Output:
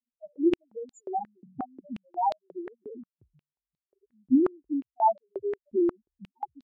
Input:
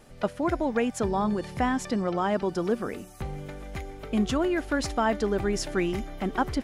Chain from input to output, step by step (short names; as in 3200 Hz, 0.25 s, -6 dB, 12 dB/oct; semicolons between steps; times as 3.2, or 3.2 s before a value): expander -32 dBFS; in parallel at -7.5 dB: bit-crush 5-bit; on the sum: loudest bins only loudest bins 1; stepped high-pass 5.6 Hz 250–4100 Hz